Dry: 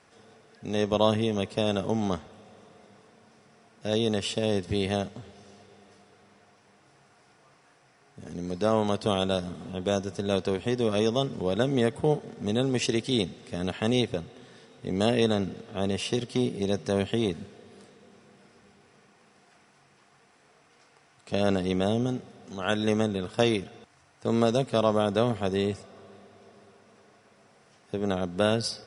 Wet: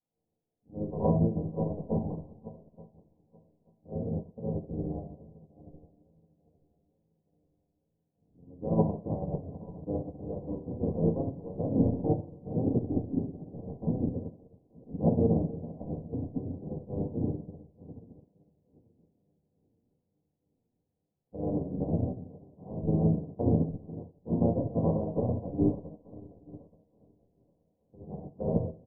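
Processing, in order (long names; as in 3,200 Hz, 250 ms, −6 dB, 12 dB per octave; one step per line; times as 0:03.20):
feedback delay that plays each chunk backwards 439 ms, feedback 71%, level −8.5 dB
Butterworth low-pass 990 Hz 96 dB per octave
hum removal 82.77 Hz, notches 39
pitch-shifted copies added −5 semitones −2 dB, −3 semitones −10 dB
low-shelf EQ 120 Hz +8.5 dB
delay with a low-pass on its return 67 ms, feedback 71%, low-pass 720 Hz, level −11.5 dB
rectangular room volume 630 cubic metres, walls furnished, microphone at 2 metres
expander for the loud parts 2.5 to 1, over −32 dBFS
level −6.5 dB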